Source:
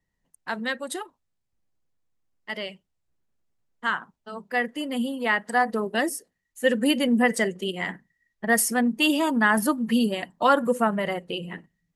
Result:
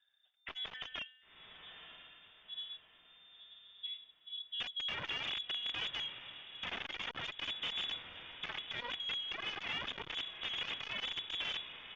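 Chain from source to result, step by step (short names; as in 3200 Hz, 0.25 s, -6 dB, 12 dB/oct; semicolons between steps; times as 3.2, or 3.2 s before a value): comb 1.4 ms, depth 34%; in parallel at +2 dB: limiter -17.5 dBFS, peak gain reduction 11 dB; on the sum: tremolo 0.6 Hz, depth 54%; low-pass sweep 2300 Hz -> 210 Hz, 0.63–1.38; overloaded stage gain 8 dB; resonator 260 Hz, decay 1.1 s, mix 60%; wrapped overs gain 31 dB; on a send: diffused feedback echo 1.011 s, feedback 41%, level -12 dB; on the sum: inverted band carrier 3600 Hz; core saturation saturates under 1000 Hz; gain -2 dB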